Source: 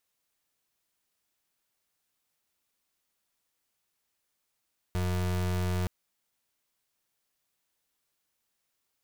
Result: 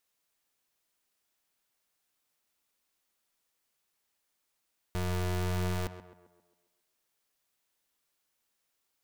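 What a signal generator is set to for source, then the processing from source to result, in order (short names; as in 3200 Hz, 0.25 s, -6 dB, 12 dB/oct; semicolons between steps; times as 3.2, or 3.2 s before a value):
pulse 90.5 Hz, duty 34% -29 dBFS 0.92 s
bell 100 Hz -4 dB 2 oct; on a send: tape echo 0.133 s, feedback 53%, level -9 dB, low-pass 2200 Hz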